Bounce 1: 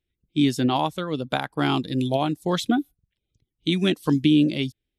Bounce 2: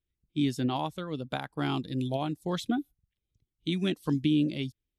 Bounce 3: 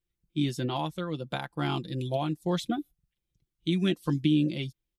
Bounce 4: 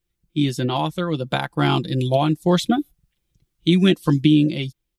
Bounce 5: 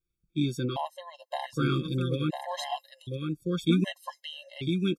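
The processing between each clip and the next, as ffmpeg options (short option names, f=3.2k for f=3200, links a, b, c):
-af "lowshelf=f=150:g=6.5,volume=-9dB"
-af "aecho=1:1:5.8:0.54"
-af "dynaudnorm=f=210:g=9:m=3.5dB,volume=7.5dB"
-filter_complex "[0:a]asplit=2[a][b];[b]aecho=0:1:1001:0.596[c];[a][c]amix=inputs=2:normalize=0,afftfilt=real='re*gt(sin(2*PI*0.65*pts/sr)*(1-2*mod(floor(b*sr/1024/540),2)),0)':imag='im*gt(sin(2*PI*0.65*pts/sr)*(1-2*mod(floor(b*sr/1024/540),2)),0)':win_size=1024:overlap=0.75,volume=-7.5dB"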